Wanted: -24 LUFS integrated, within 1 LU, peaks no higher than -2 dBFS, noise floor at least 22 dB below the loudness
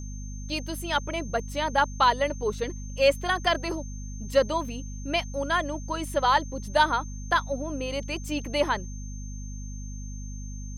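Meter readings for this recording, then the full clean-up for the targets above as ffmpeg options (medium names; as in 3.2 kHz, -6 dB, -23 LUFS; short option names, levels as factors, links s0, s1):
hum 50 Hz; highest harmonic 250 Hz; hum level -34 dBFS; steady tone 6.3 kHz; tone level -46 dBFS; loudness -27.0 LUFS; peak level -8.0 dBFS; loudness target -24.0 LUFS
-> -af "bandreject=f=50:t=h:w=4,bandreject=f=100:t=h:w=4,bandreject=f=150:t=h:w=4,bandreject=f=200:t=h:w=4,bandreject=f=250:t=h:w=4"
-af "bandreject=f=6300:w=30"
-af "volume=1.41"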